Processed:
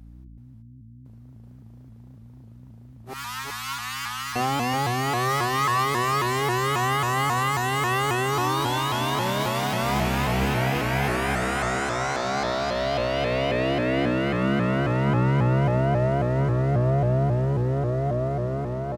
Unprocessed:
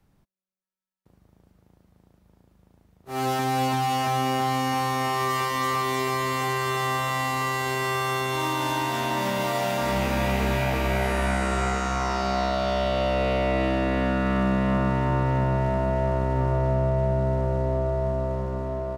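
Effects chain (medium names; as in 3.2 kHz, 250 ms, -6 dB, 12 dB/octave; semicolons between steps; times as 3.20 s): 3.13–4.36 s: Chebyshev high-pass 910 Hz, order 8; hum 60 Hz, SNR 19 dB; on a send: delay 375 ms -3 dB; on the sum: vibrato with a chosen wave saw up 3.7 Hz, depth 160 cents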